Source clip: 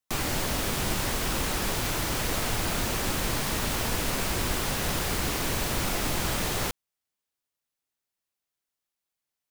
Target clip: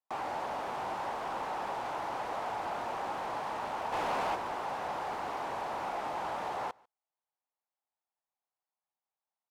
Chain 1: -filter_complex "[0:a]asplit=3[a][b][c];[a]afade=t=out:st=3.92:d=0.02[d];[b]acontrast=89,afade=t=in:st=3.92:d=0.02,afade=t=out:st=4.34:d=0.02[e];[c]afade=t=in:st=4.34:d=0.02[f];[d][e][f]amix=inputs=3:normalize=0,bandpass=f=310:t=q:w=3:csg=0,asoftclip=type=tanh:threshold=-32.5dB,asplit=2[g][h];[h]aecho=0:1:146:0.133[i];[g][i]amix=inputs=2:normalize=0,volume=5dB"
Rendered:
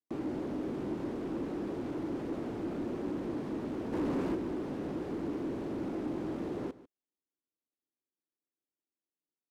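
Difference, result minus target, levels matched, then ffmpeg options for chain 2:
250 Hz band +15.5 dB; echo-to-direct +10 dB
-filter_complex "[0:a]asplit=3[a][b][c];[a]afade=t=out:st=3.92:d=0.02[d];[b]acontrast=89,afade=t=in:st=3.92:d=0.02,afade=t=out:st=4.34:d=0.02[e];[c]afade=t=in:st=4.34:d=0.02[f];[d][e][f]amix=inputs=3:normalize=0,bandpass=f=830:t=q:w=3:csg=0,asoftclip=type=tanh:threshold=-32.5dB,asplit=2[g][h];[h]aecho=0:1:146:0.0422[i];[g][i]amix=inputs=2:normalize=0,volume=5dB"

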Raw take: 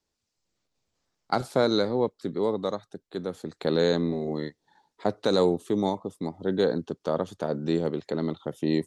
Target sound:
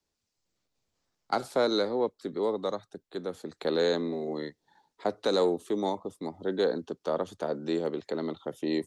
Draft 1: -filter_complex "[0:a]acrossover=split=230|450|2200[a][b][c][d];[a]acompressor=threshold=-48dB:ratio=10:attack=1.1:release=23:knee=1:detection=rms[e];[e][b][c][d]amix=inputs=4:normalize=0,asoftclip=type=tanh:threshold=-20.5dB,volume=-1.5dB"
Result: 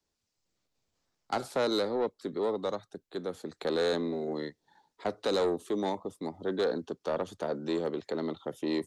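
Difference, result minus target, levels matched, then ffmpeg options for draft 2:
soft clip: distortion +15 dB
-filter_complex "[0:a]acrossover=split=230|450|2200[a][b][c][d];[a]acompressor=threshold=-48dB:ratio=10:attack=1.1:release=23:knee=1:detection=rms[e];[e][b][c][d]amix=inputs=4:normalize=0,asoftclip=type=tanh:threshold=-10.5dB,volume=-1.5dB"

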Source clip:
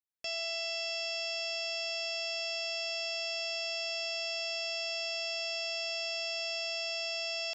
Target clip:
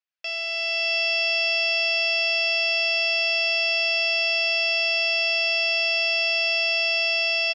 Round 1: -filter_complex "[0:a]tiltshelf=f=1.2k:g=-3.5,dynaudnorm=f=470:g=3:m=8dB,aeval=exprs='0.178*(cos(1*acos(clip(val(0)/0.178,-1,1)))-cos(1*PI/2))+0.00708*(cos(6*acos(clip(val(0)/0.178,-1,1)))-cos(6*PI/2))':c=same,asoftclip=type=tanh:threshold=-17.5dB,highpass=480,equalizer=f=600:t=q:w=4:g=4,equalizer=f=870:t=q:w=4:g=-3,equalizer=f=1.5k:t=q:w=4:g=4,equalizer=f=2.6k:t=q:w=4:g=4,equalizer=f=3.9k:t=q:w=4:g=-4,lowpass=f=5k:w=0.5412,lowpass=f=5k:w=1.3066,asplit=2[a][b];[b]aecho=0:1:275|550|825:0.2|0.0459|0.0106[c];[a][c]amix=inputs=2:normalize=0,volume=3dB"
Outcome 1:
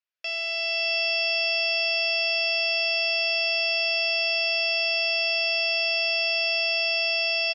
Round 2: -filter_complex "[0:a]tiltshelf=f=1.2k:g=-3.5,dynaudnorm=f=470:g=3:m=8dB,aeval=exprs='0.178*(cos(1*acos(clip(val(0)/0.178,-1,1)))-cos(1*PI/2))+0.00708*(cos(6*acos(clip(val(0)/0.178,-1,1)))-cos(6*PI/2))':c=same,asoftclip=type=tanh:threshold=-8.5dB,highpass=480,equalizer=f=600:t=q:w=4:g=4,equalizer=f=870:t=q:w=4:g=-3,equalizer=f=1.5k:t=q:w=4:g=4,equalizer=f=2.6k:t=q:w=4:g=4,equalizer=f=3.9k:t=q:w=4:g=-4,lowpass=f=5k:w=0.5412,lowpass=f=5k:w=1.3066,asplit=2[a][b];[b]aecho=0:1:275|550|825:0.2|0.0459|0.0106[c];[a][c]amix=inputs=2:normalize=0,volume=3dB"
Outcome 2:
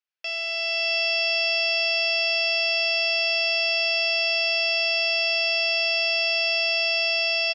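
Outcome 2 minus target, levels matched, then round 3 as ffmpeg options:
echo-to-direct +11.5 dB
-filter_complex "[0:a]tiltshelf=f=1.2k:g=-3.5,dynaudnorm=f=470:g=3:m=8dB,aeval=exprs='0.178*(cos(1*acos(clip(val(0)/0.178,-1,1)))-cos(1*PI/2))+0.00708*(cos(6*acos(clip(val(0)/0.178,-1,1)))-cos(6*PI/2))':c=same,asoftclip=type=tanh:threshold=-8.5dB,highpass=480,equalizer=f=600:t=q:w=4:g=4,equalizer=f=870:t=q:w=4:g=-3,equalizer=f=1.5k:t=q:w=4:g=4,equalizer=f=2.6k:t=q:w=4:g=4,equalizer=f=3.9k:t=q:w=4:g=-4,lowpass=f=5k:w=0.5412,lowpass=f=5k:w=1.3066,asplit=2[a][b];[b]aecho=0:1:275|550:0.0531|0.0122[c];[a][c]amix=inputs=2:normalize=0,volume=3dB"

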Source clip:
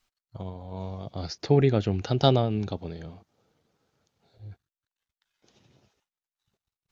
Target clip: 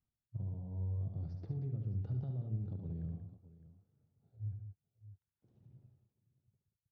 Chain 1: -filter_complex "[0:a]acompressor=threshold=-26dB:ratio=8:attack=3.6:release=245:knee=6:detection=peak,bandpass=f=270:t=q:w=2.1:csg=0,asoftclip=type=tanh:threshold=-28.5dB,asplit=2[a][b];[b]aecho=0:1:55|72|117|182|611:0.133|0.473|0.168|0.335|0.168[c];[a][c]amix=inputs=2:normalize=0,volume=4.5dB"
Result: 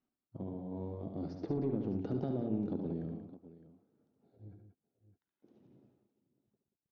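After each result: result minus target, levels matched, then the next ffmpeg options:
250 Hz band +8.0 dB; compressor: peak gain reduction -7 dB
-filter_complex "[0:a]acompressor=threshold=-26dB:ratio=8:attack=3.6:release=245:knee=6:detection=peak,bandpass=f=110:t=q:w=2.1:csg=0,asoftclip=type=tanh:threshold=-28.5dB,asplit=2[a][b];[b]aecho=0:1:55|72|117|182|611:0.133|0.473|0.168|0.335|0.168[c];[a][c]amix=inputs=2:normalize=0,volume=4.5dB"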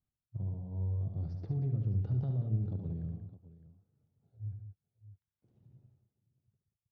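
compressor: peak gain reduction -7 dB
-filter_complex "[0:a]acompressor=threshold=-34dB:ratio=8:attack=3.6:release=245:knee=6:detection=peak,bandpass=f=110:t=q:w=2.1:csg=0,asoftclip=type=tanh:threshold=-28.5dB,asplit=2[a][b];[b]aecho=0:1:55|72|117|182|611:0.133|0.473|0.168|0.335|0.168[c];[a][c]amix=inputs=2:normalize=0,volume=4.5dB"

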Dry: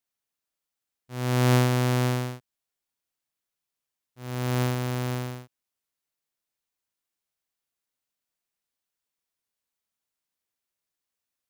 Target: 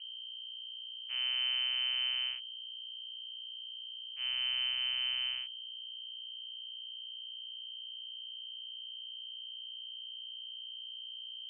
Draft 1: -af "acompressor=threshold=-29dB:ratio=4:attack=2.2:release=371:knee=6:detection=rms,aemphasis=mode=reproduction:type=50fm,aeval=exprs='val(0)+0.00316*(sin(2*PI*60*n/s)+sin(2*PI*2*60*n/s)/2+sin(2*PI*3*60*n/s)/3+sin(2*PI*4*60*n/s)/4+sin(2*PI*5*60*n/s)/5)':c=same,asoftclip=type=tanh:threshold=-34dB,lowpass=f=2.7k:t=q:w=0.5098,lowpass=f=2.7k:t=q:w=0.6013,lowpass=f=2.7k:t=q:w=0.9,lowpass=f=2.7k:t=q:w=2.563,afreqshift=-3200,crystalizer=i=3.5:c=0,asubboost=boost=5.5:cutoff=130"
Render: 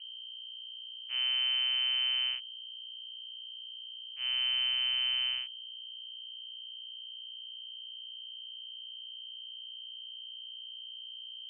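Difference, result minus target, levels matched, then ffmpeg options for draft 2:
compressor: peak gain reduction -7 dB
-af "acompressor=threshold=-38dB:ratio=4:attack=2.2:release=371:knee=6:detection=rms,aemphasis=mode=reproduction:type=50fm,aeval=exprs='val(0)+0.00316*(sin(2*PI*60*n/s)+sin(2*PI*2*60*n/s)/2+sin(2*PI*3*60*n/s)/3+sin(2*PI*4*60*n/s)/4+sin(2*PI*5*60*n/s)/5)':c=same,asoftclip=type=tanh:threshold=-34dB,lowpass=f=2.7k:t=q:w=0.5098,lowpass=f=2.7k:t=q:w=0.6013,lowpass=f=2.7k:t=q:w=0.9,lowpass=f=2.7k:t=q:w=2.563,afreqshift=-3200,crystalizer=i=3.5:c=0,asubboost=boost=5.5:cutoff=130"

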